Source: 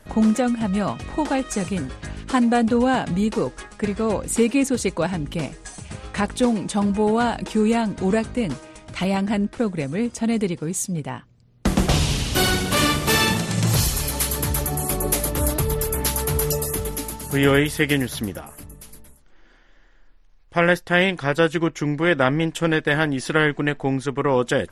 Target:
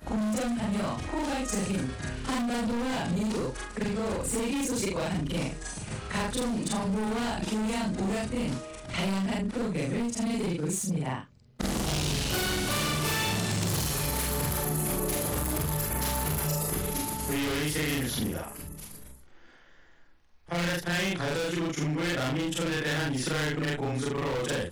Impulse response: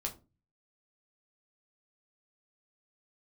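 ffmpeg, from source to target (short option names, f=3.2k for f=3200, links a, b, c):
-filter_complex "[0:a]afftfilt=real='re':imag='-im':win_size=4096:overlap=0.75,volume=25.5dB,asoftclip=hard,volume=-25.5dB,acrossover=split=140|2800[a][b][c];[a]acompressor=threshold=-39dB:ratio=4[d];[b]acompressor=threshold=-33dB:ratio=4[e];[c]acompressor=threshold=-35dB:ratio=4[f];[d][e][f]amix=inputs=3:normalize=0,volume=4dB"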